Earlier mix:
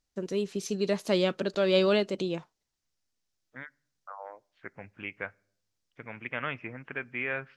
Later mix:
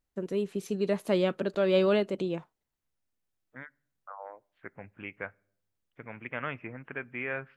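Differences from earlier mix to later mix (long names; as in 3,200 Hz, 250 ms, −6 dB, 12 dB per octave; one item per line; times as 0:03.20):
first voice: add high-shelf EQ 5,300 Hz +3.5 dB
master: add parametric band 5,500 Hz −13.5 dB 1.4 octaves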